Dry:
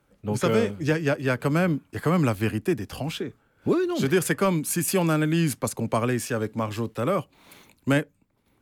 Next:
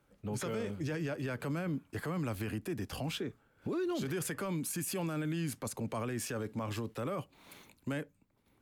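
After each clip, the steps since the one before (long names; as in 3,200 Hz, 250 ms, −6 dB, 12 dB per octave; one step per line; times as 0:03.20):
brickwall limiter −24 dBFS, peak gain reduction 12 dB
level −4.5 dB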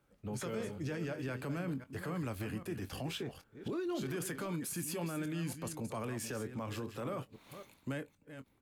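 delay that plays each chunk backwards 263 ms, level −10 dB
double-tracking delay 23 ms −13 dB
level −3 dB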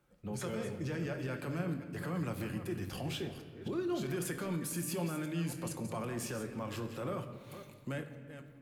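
rectangular room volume 2,400 cubic metres, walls mixed, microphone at 0.92 metres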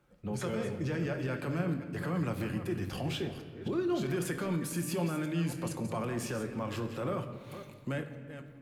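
high-shelf EQ 6,200 Hz −6.5 dB
level +4 dB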